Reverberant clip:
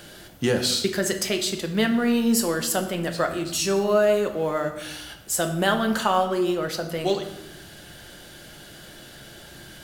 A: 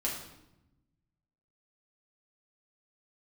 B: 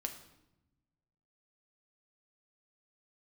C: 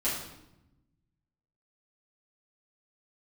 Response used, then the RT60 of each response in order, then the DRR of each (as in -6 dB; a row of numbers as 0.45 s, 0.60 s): B; 0.90 s, 0.90 s, 0.90 s; -4.5 dB, 4.5 dB, -11.5 dB